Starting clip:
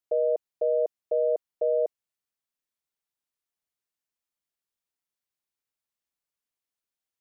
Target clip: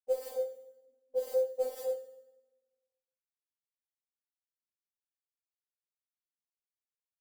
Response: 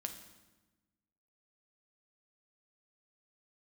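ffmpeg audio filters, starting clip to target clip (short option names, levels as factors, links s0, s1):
-filter_complex "[0:a]aemphasis=mode=reproduction:type=75fm,acrusher=bits=8:mix=0:aa=0.000001,flanger=delay=18:depth=2.7:speed=1.3,asplit=3[s0][s1][s2];[s0]afade=t=out:st=0.5:d=0.02[s3];[s1]asuperpass=centerf=360:order=12:qfactor=5.6,afade=t=in:st=0.5:d=0.02,afade=t=out:st=1.17:d=0.02[s4];[s2]afade=t=in:st=1.17:d=0.02[s5];[s3][s4][s5]amix=inputs=3:normalize=0,aecho=1:1:25|50|79:0.501|0.562|0.178,asplit=2[s6][s7];[1:a]atrim=start_sample=2205[s8];[s7][s8]afir=irnorm=-1:irlink=0,volume=0.708[s9];[s6][s9]amix=inputs=2:normalize=0,alimiter=level_in=7.5:limit=0.891:release=50:level=0:latency=1,afftfilt=real='re*3.46*eq(mod(b,12),0)':imag='im*3.46*eq(mod(b,12),0)':win_size=2048:overlap=0.75,volume=0.501"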